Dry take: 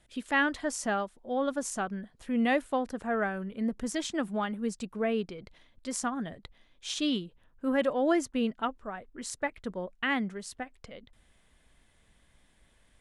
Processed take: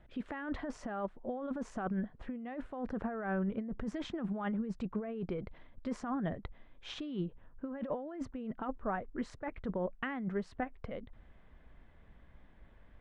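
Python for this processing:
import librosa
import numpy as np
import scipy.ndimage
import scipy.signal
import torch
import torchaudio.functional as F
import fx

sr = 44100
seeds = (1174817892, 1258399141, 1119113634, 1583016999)

y = scipy.signal.sosfilt(scipy.signal.butter(2, 1600.0, 'lowpass', fs=sr, output='sos'), x)
y = fx.low_shelf(y, sr, hz=130.0, db=3.5)
y = fx.over_compress(y, sr, threshold_db=-36.0, ratio=-1.0)
y = y * librosa.db_to_amplitude(-1.0)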